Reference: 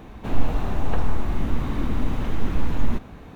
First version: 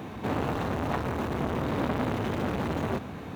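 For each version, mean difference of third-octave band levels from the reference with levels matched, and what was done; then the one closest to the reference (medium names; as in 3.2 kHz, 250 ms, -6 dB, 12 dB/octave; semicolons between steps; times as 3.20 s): 2.5 dB: high-pass 85 Hz 24 dB/octave; transformer saturation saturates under 1.3 kHz; trim +5.5 dB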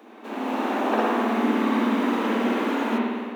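9.0 dB: Chebyshev high-pass 210 Hz, order 10; level rider gain up to 8 dB; spring tank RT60 1.5 s, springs 54 ms, chirp 65 ms, DRR -4.5 dB; trim -3.5 dB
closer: first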